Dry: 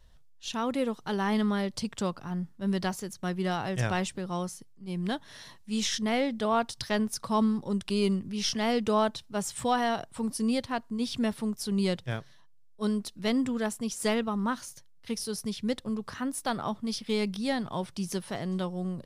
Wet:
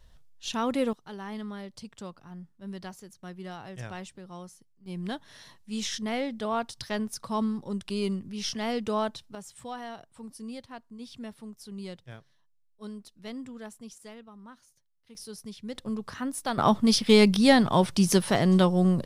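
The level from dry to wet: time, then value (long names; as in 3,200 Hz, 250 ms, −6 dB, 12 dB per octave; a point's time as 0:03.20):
+2 dB
from 0:00.93 −10.5 dB
from 0:04.86 −3 dB
from 0:09.35 −12 dB
from 0:13.98 −19 dB
from 0:15.15 −8 dB
from 0:15.75 0 dB
from 0:16.58 +11 dB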